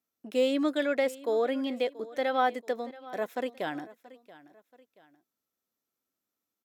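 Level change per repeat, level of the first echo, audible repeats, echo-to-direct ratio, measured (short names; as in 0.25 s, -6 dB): -8.0 dB, -19.0 dB, 2, -18.5 dB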